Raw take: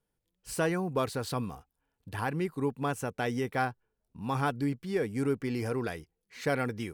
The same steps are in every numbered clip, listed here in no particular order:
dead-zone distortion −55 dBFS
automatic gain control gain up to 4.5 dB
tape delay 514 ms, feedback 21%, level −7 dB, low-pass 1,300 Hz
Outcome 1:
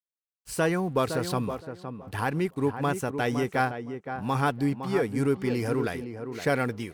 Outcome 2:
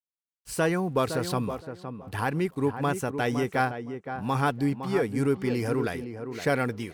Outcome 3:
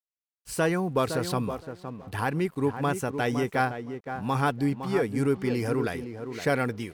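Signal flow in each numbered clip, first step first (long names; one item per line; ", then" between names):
dead-zone distortion, then tape delay, then automatic gain control
automatic gain control, then dead-zone distortion, then tape delay
tape delay, then automatic gain control, then dead-zone distortion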